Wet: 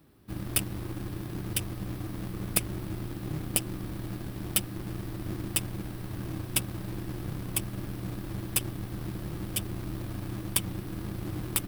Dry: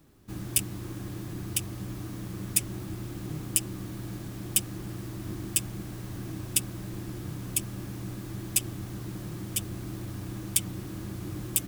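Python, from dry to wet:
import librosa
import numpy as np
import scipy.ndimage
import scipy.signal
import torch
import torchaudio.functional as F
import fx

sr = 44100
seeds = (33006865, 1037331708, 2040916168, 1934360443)

p1 = fx.tracing_dist(x, sr, depth_ms=0.025)
p2 = fx.highpass(p1, sr, hz=48.0, slope=6)
p3 = fx.peak_eq(p2, sr, hz=6800.0, db=-10.5, octaves=0.48)
p4 = fx.schmitt(p3, sr, flips_db=-32.0)
y = p3 + F.gain(torch.from_numpy(p4), -5.5).numpy()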